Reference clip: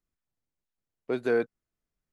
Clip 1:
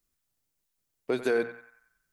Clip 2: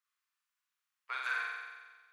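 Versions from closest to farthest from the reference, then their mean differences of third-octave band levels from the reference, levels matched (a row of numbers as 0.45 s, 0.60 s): 1, 2; 4.0 dB, 16.0 dB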